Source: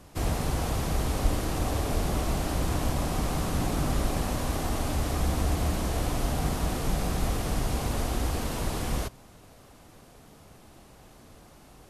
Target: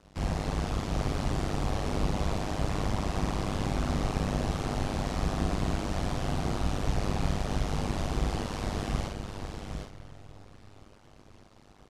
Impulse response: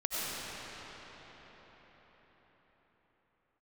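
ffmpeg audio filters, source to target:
-filter_complex "[0:a]aecho=1:1:775:0.473,asplit=2[a][b];[1:a]atrim=start_sample=2205,asetrate=52920,aresample=44100,adelay=109[c];[b][c]afir=irnorm=-1:irlink=0,volume=-19.5dB[d];[a][d]amix=inputs=2:normalize=0,tremolo=f=100:d=0.947,asplit=2[e][f];[f]adelay=49,volume=-4dB[g];[e][g]amix=inputs=2:normalize=0,aeval=exprs='sgn(val(0))*max(abs(val(0))-0.00119,0)':c=same,lowpass=6.2k"

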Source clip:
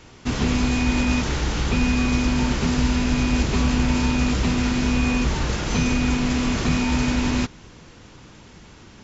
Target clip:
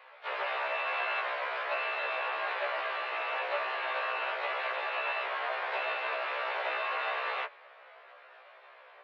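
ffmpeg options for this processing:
-filter_complex "[0:a]highpass=f=410:t=q:w=0.5412,highpass=f=410:t=q:w=1.307,lowpass=f=2.3k:t=q:w=0.5176,lowpass=f=2.3k:t=q:w=0.7071,lowpass=f=2.3k:t=q:w=1.932,afreqshift=180,asplit=2[a][b];[b]asetrate=66075,aresample=44100,atempo=0.66742,volume=-9dB[c];[a][c]amix=inputs=2:normalize=0,afftfilt=real='re*1.73*eq(mod(b,3),0)':imag='im*1.73*eq(mod(b,3),0)':win_size=2048:overlap=0.75"

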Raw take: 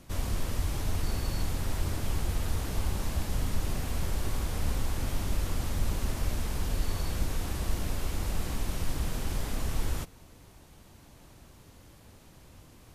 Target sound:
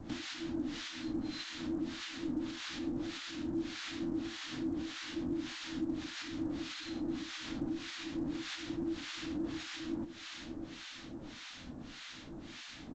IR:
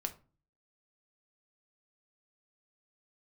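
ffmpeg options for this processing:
-filter_complex "[0:a]equalizer=f=140:t=o:w=0.73:g=-5,flanger=delay=9:depth=2.8:regen=80:speed=1.6:shape=sinusoidal,equalizer=f=125:t=o:w=1:g=3,equalizer=f=500:t=o:w=1:g=4,equalizer=f=2k:t=o:w=1:g=8,equalizer=f=4k:t=o:w=1:g=11,aecho=1:1:412|824|1236|1648:0.0891|0.0508|0.029|0.0165,acompressor=threshold=-44dB:ratio=8,afreqshift=-340,acrossover=split=940[a][b];[a]aeval=exprs='val(0)*(1-1/2+1/2*cos(2*PI*1.7*n/s))':c=same[c];[b]aeval=exprs='val(0)*(1-1/2-1/2*cos(2*PI*1.7*n/s))':c=same[d];[c][d]amix=inputs=2:normalize=0,volume=11.5dB" -ar 16000 -c:a pcm_alaw

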